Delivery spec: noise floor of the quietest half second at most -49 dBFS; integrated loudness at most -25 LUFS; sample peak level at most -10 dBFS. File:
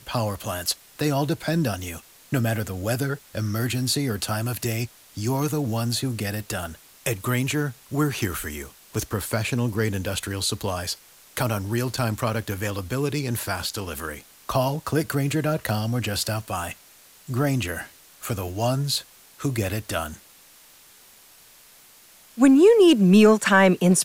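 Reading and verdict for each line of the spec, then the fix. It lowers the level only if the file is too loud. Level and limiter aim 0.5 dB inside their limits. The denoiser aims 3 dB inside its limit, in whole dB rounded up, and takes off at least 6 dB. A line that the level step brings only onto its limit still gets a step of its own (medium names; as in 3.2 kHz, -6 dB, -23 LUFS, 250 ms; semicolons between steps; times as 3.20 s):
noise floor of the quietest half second -52 dBFS: pass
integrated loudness -24.0 LUFS: fail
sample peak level -6.0 dBFS: fail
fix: trim -1.5 dB; peak limiter -10.5 dBFS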